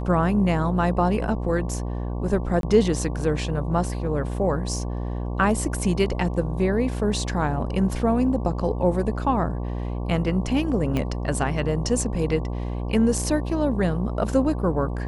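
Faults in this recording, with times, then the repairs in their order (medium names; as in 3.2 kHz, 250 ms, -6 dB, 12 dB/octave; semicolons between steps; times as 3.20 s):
buzz 60 Hz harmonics 19 -28 dBFS
2.61–2.63 s: dropout 22 ms
10.97 s: pop -13 dBFS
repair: de-click; de-hum 60 Hz, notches 19; interpolate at 2.61 s, 22 ms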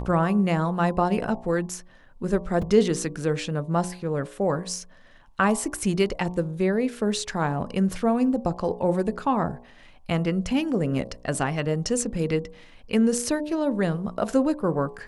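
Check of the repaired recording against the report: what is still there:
10.97 s: pop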